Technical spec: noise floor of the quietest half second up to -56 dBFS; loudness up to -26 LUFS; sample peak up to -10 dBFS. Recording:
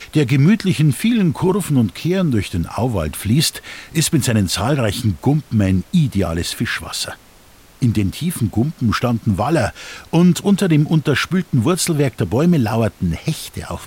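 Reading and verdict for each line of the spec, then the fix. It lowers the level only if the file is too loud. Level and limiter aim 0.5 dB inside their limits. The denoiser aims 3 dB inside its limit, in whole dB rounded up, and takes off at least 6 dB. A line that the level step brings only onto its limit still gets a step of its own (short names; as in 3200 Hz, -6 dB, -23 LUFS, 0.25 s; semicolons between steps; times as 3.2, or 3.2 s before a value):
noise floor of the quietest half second -46 dBFS: fail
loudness -17.5 LUFS: fail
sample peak -5.0 dBFS: fail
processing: denoiser 6 dB, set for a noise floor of -46 dBFS; gain -9 dB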